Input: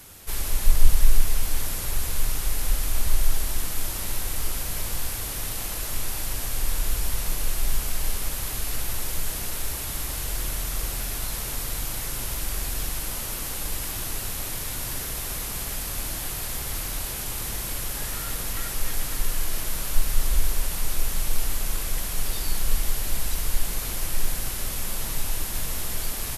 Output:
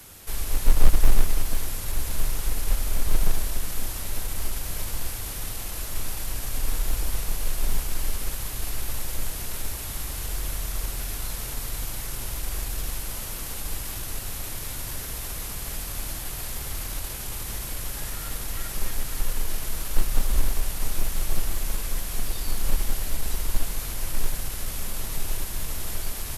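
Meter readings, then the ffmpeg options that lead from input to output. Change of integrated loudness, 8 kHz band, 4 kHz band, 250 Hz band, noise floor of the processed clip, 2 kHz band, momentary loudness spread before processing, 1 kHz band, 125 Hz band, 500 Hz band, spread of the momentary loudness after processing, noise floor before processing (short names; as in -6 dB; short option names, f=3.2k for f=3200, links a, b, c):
-2.0 dB, -3.0 dB, -3.0 dB, 0.0 dB, -34 dBFS, -2.5 dB, 2 LU, -1.5 dB, 0.0 dB, -0.5 dB, 4 LU, -32 dBFS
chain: -filter_complex "[0:a]acrossover=split=120[a][b];[a]acrusher=bits=5:mode=log:mix=0:aa=0.000001[c];[b]alimiter=level_in=2.5dB:limit=-24dB:level=0:latency=1:release=24,volume=-2.5dB[d];[c][d]amix=inputs=2:normalize=0"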